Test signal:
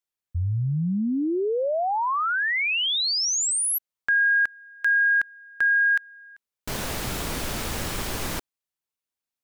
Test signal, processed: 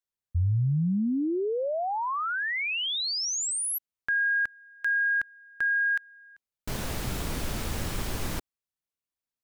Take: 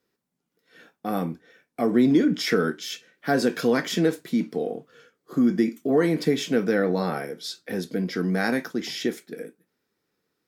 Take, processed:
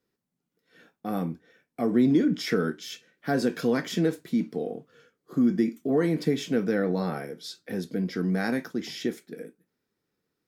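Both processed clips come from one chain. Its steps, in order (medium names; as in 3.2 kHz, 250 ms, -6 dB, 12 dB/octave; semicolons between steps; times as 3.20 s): bass shelf 250 Hz +7 dB; trim -5.5 dB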